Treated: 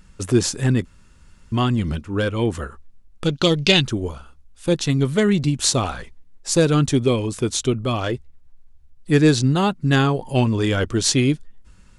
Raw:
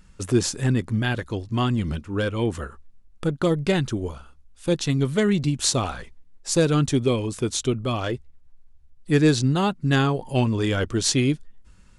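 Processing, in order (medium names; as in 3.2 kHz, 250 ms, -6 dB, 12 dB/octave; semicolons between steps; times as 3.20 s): 0.85–1.52 s: room tone; 3.24–3.82 s: high-order bell 4 kHz +14 dB; trim +3 dB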